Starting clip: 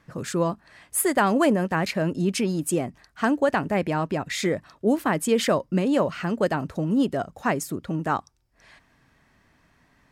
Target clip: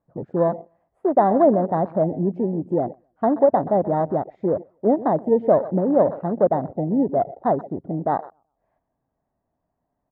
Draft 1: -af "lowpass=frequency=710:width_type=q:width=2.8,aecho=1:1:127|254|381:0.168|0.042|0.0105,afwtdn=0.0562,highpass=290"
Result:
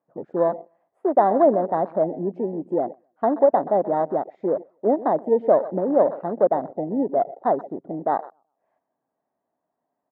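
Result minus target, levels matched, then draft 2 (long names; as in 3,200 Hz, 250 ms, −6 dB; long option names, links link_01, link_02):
250 Hz band −3.0 dB
-af "lowpass=frequency=710:width_type=q:width=2.8,aecho=1:1:127|254|381:0.168|0.042|0.0105,afwtdn=0.0562"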